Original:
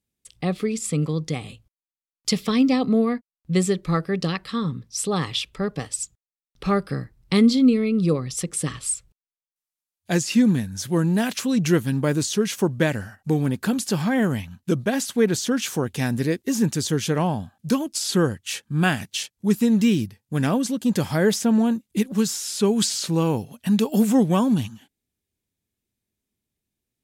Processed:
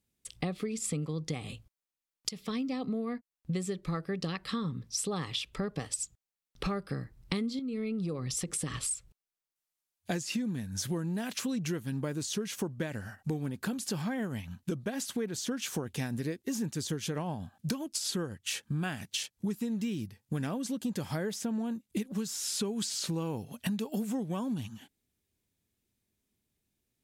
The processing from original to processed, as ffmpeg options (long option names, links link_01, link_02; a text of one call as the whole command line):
ffmpeg -i in.wav -filter_complex "[0:a]asettb=1/sr,asplit=3[link_01][link_02][link_03];[link_01]atrim=end=7.594[link_04];[link_02]atrim=start=7.59:end=8.91,asetpts=PTS-STARTPTS,afade=type=in:duration=0.004:curve=qsin,afade=type=out:start_time=1.316:duration=0.004:curve=qsin,acompressor=threshold=-29dB:ratio=2.5:attack=3.2:release=140:knee=1:detection=peak[link_05];[link_03]atrim=start=8.906[link_06];[link_04][link_05]acrossfade=duration=0.004:curve1=hsin:curve2=qsin[link_07];[link_07][link_06]acrossfade=duration=0.004:curve1=qsin:curve2=hsin,asettb=1/sr,asplit=3[link_08][link_09][link_10];[link_08]atrim=end=12.704[link_11];[link_09]atrim=start=12.7:end=18.4,asetpts=PTS-STARTPTS,afade=type=in:duration=0.004:curve=qsin,afade=type=out:start_time=5.696:duration=0.004:curve=qsin,tremolo=f=7.8:d=0.31[link_12];[link_10]atrim=start=18.396[link_13];[link_11][link_12]acrossfade=duration=0.004:curve1=hsin:curve2=qsin[link_14];[link_14][link_13]acrossfade=duration=0.004:curve1=qsin:curve2=hsin,asplit=2[link_15][link_16];[link_15]atrim=end=2.29,asetpts=PTS-STARTPTS,afade=type=out:start_time=2.286:duration=0.004:curve=hsin:silence=0.133352[link_17];[link_16]atrim=start=2.29,asetpts=PTS-STARTPTS,afade=type=in:duration=1.46:silence=0.133352[link_18];[link_17][link_18]concat=n=2:v=0:a=1,acompressor=threshold=-32dB:ratio=12,volume=1.5dB" out.wav